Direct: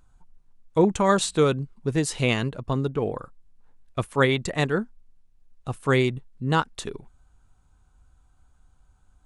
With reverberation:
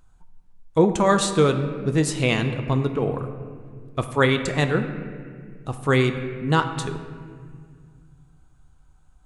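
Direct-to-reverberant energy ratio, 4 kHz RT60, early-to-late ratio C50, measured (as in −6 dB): 7.0 dB, 1.3 s, 9.0 dB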